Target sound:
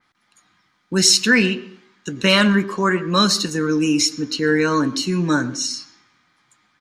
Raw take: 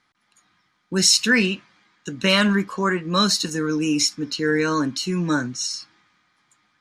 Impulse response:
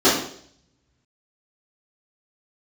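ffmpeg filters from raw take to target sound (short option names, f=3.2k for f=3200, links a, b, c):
-filter_complex "[0:a]asplit=2[a][b];[b]adelay=130,highpass=300,lowpass=3.4k,asoftclip=type=hard:threshold=-12.5dB,volume=-22dB[c];[a][c]amix=inputs=2:normalize=0,asplit=2[d][e];[1:a]atrim=start_sample=2205,adelay=86[f];[e][f]afir=irnorm=-1:irlink=0,volume=-41.5dB[g];[d][g]amix=inputs=2:normalize=0,adynamicequalizer=threshold=0.0224:dfrequency=3500:dqfactor=0.7:tfrequency=3500:tqfactor=0.7:attack=5:release=100:ratio=0.375:range=2.5:mode=cutabove:tftype=highshelf,volume=3dB"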